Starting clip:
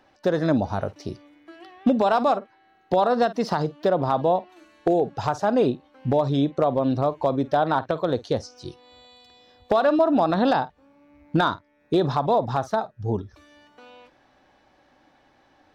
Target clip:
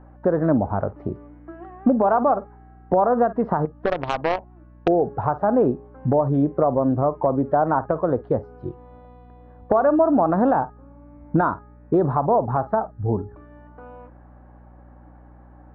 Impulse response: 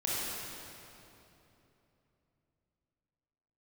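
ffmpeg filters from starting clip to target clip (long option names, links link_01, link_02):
-filter_complex "[0:a]lowpass=frequency=1400:width=0.5412,lowpass=frequency=1400:width=1.3066,bandreject=frequency=414.6:width_type=h:width=4,bandreject=frequency=829.2:width_type=h:width=4,bandreject=frequency=1243.8:width_type=h:width=4,bandreject=frequency=1658.4:width_type=h:width=4,bandreject=frequency=2073:width_type=h:width=4,bandreject=frequency=2487.6:width_type=h:width=4,bandreject=frequency=2902.2:width_type=h:width=4,asplit=2[link_01][link_02];[link_02]acompressor=threshold=-30dB:ratio=6,volume=0.5dB[link_03];[link_01][link_03]amix=inputs=2:normalize=0,asettb=1/sr,asplit=3[link_04][link_05][link_06];[link_04]atrim=end=3.654[link_07];[link_05]atrim=start=3.65:end=4.88,asetpts=PTS-STARTPTS,afade=type=in:duration=0.004:curve=qsin,afade=type=out:start_time=1.226:duration=0.004:curve=qsin,aeval=exprs='0.422*(cos(1*acos(clip(val(0)/0.422,-1,1)))-cos(1*PI/2))+0.0944*(cos(3*acos(clip(val(0)/0.422,-1,1)))-cos(3*PI/2))+0.0596*(cos(6*acos(clip(val(0)/0.422,-1,1)))-cos(6*PI/2))+0.0376*(cos(8*acos(clip(val(0)/0.422,-1,1)))-cos(8*PI/2))':channel_layout=same[link_08];[link_06]atrim=start=4.876[link_09];[link_07][link_08]acrossfade=duration=0.004:curve1=hsin:curve2=qsin[link_10];[link_10][link_09]acrossfade=duration=0.004:curve1=qsin:curve2=hsin,aeval=exprs='val(0)+0.00501*(sin(2*PI*60*n/s)+sin(2*PI*2*60*n/s)/2+sin(2*PI*3*60*n/s)/3+sin(2*PI*4*60*n/s)/4+sin(2*PI*5*60*n/s)/5)':channel_layout=same"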